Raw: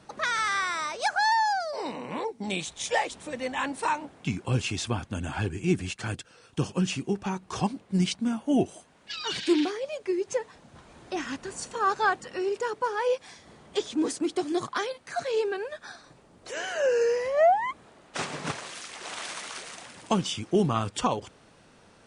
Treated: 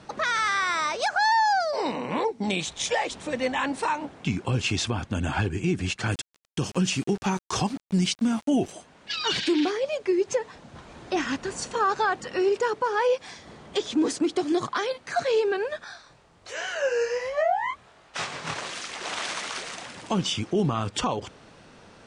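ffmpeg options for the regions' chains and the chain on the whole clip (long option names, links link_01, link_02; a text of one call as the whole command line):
ffmpeg -i in.wav -filter_complex "[0:a]asettb=1/sr,asplit=3[link_01][link_02][link_03];[link_01]atrim=end=6.124[link_04];[link_02]atrim=start=6.12:end=8.72,asetpts=PTS-STARTPTS,afade=type=in:duration=0.004:curve=qsin,afade=type=out:start_time=2.596:duration=0.004:curve=qsin,aemphasis=mode=production:type=cd,aeval=exprs='val(0)*gte(abs(val(0)),0.0075)':channel_layout=same[link_05];[link_03]atrim=start=8.716[link_06];[link_04][link_05]acrossfade=duration=0.004:curve1=hsin:curve2=qsin[link_07];[link_07][link_06]acrossfade=duration=0.004:curve1=qsin:curve2=hsin,asettb=1/sr,asplit=3[link_08][link_09][link_10];[link_08]atrim=end=15.844[link_11];[link_09]atrim=start=15.84:end=18.56,asetpts=PTS-STARTPTS,afade=type=in:duration=0.004:curve=qsin,afade=type=out:start_time=2.716:duration=0.004:curve=qsin,equalizer=frequency=270:width_type=o:width=2:gain=-10,flanger=delay=18.5:depth=7:speed=1.3[link_12];[link_10]atrim=start=18.556[link_13];[link_11][link_12]acrossfade=duration=0.004:curve1=hsin:curve2=qsin[link_14];[link_14][link_13]acrossfade=duration=0.004:curve1=qsin:curve2=hsin,lowpass=7200,alimiter=limit=-21.5dB:level=0:latency=1:release=112,volume=6dB" out.wav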